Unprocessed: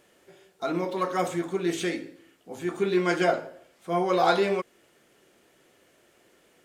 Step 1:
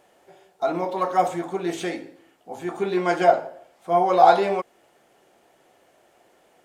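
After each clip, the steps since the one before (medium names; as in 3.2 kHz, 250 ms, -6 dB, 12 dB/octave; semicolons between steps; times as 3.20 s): peaking EQ 770 Hz +12.5 dB 0.84 oct; trim -1.5 dB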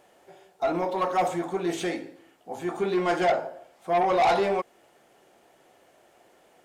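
saturation -17.5 dBFS, distortion -8 dB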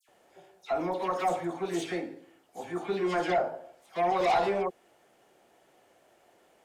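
phase dispersion lows, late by 88 ms, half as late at 2.1 kHz; trim -4 dB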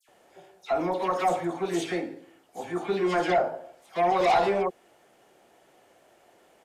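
resampled via 32 kHz; trim +3.5 dB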